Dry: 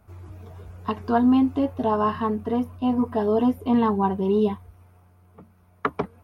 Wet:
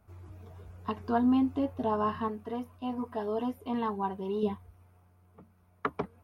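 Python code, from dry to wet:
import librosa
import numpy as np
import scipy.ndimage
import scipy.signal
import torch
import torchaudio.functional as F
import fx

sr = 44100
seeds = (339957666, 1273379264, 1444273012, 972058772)

y = fx.low_shelf(x, sr, hz=420.0, db=-8.0, at=(2.28, 4.43))
y = y * 10.0 ** (-7.0 / 20.0)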